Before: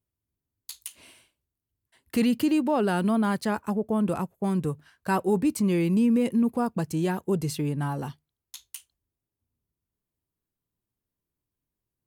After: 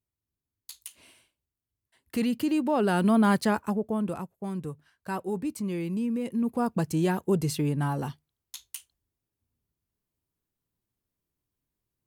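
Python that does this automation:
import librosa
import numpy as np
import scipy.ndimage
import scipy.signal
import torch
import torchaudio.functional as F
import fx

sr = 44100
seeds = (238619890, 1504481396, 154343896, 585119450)

y = fx.gain(x, sr, db=fx.line((2.39, -4.0), (3.34, 4.0), (4.3, -7.5), (6.24, -7.5), (6.72, 1.0)))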